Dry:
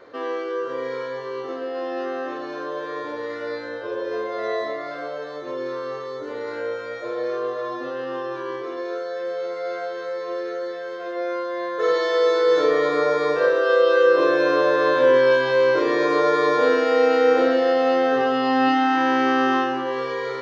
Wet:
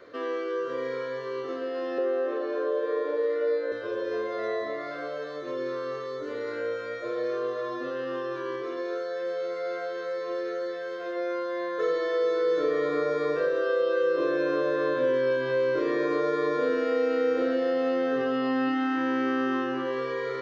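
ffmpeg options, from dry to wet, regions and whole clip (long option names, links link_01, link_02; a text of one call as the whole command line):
ffmpeg -i in.wav -filter_complex "[0:a]asettb=1/sr,asplit=3[link_01][link_02][link_03];[link_01]atrim=end=1.984[link_04];[link_02]atrim=start=1.98:end=3.72,asetpts=PTS-STARTPTS,afade=type=in:duration=0.004:curve=qsin,afade=type=out:start_time=1.736:duration=0.004:curve=qsin,highpass=frequency=450:width_type=q:width=2.9,aemphasis=mode=reproduction:type=75fm[link_05];[link_03]atrim=start=3.716[link_06];[link_04][link_05]acrossfade=duration=0.004:curve1=hsin:curve2=qsin[link_07];[link_07][link_06]acrossfade=duration=0.004:curve1=qsin:curve2=hsin,equalizer=frequency=840:width_type=o:width=0.29:gain=-14,acrossover=split=440|2500[link_08][link_09][link_10];[link_08]acompressor=threshold=-24dB:ratio=4[link_11];[link_09]acompressor=threshold=-28dB:ratio=4[link_12];[link_10]acompressor=threshold=-49dB:ratio=4[link_13];[link_11][link_12][link_13]amix=inputs=3:normalize=0,volume=-2dB" out.wav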